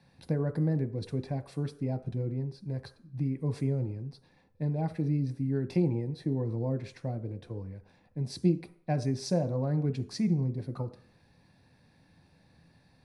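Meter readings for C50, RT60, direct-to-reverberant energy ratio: 15.5 dB, 0.50 s, 8.5 dB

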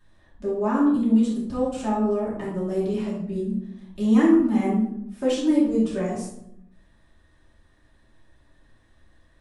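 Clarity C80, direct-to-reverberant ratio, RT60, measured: 7.0 dB, −8.0 dB, 0.75 s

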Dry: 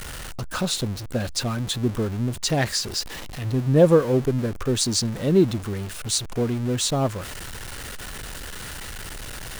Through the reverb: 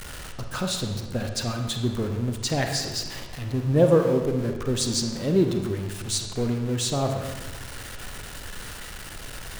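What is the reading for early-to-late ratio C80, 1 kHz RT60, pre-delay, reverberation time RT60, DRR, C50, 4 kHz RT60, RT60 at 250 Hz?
7.5 dB, 1.2 s, 35 ms, 1.3 s, 4.5 dB, 5.5 dB, 0.95 s, 1.6 s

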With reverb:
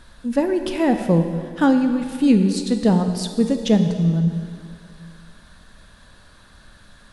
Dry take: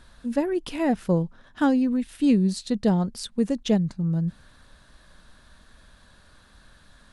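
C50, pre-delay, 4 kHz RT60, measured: 7.5 dB, 6 ms, 2.1 s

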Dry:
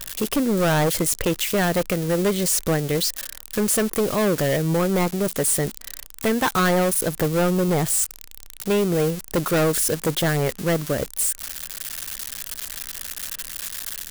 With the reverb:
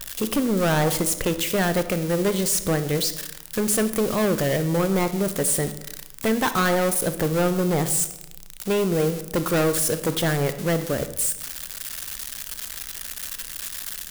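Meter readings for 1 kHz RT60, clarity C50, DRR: 0.90 s, 12.0 dB, 10.5 dB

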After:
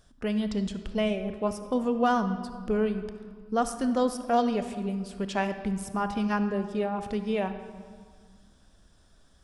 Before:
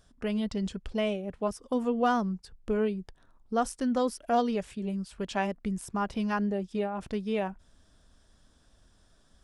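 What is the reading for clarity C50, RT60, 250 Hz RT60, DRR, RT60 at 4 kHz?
9.5 dB, 1.9 s, 2.6 s, 9.0 dB, 1.3 s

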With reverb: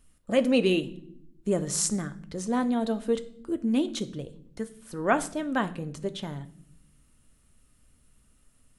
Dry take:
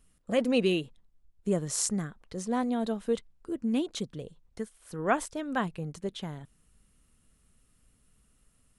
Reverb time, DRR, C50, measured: non-exponential decay, 9.5 dB, 17.0 dB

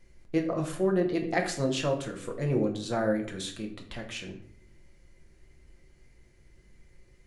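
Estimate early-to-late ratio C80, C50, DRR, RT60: 13.0 dB, 9.5 dB, 2.0 dB, 0.65 s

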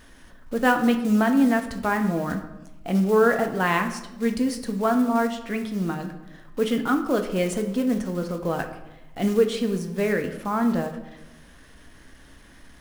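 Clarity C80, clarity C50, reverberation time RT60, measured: 12.0 dB, 9.5 dB, 0.95 s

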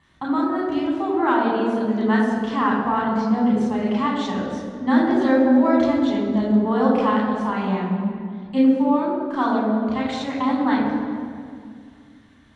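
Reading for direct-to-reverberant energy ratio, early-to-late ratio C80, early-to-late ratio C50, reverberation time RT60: −4.0 dB, 2.5 dB, 1.0 dB, 2.2 s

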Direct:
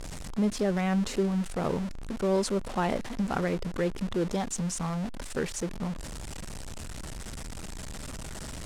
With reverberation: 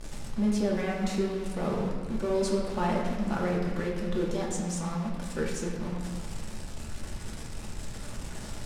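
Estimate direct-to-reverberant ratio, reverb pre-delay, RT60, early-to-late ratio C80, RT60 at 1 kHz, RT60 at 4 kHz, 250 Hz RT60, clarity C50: −3.0 dB, 3 ms, 1.6 s, 4.0 dB, 1.5 s, 1.1 s, 2.2 s, 2.0 dB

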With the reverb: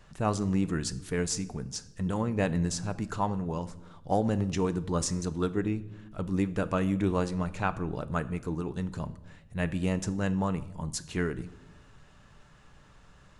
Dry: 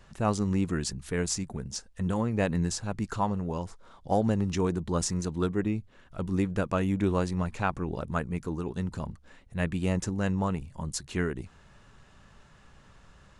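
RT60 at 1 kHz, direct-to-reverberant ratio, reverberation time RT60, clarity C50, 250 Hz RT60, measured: 0.80 s, 12.0 dB, 0.95 s, 17.0 dB, 1.4 s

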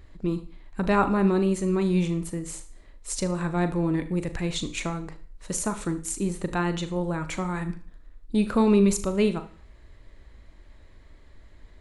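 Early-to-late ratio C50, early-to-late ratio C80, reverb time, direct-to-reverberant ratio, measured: 13.5 dB, 17.5 dB, 0.50 s, 9.5 dB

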